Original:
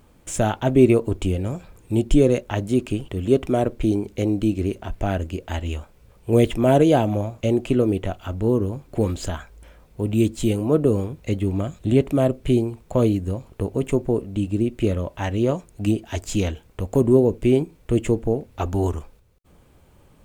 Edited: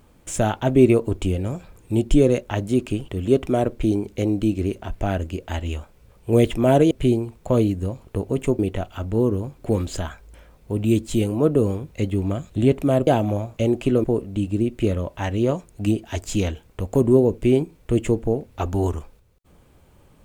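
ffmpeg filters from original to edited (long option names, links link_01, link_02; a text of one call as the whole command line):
ffmpeg -i in.wav -filter_complex "[0:a]asplit=5[link_01][link_02][link_03][link_04][link_05];[link_01]atrim=end=6.912[link_06];[link_02]atrim=start=12.358:end=14.042[link_07];[link_03]atrim=start=7.878:end=12.362[link_08];[link_04]atrim=start=6.908:end=7.882[link_09];[link_05]atrim=start=14.038[link_10];[link_06][link_07]acrossfade=duration=0.004:curve1=hsin:curve2=hsin[link_11];[link_11][link_08]acrossfade=duration=0.004:curve1=hsin:curve2=hsin[link_12];[link_12][link_09]acrossfade=duration=0.004:curve1=hsin:curve2=hsin[link_13];[link_13][link_10]acrossfade=duration=0.004:curve1=hsin:curve2=hsin" out.wav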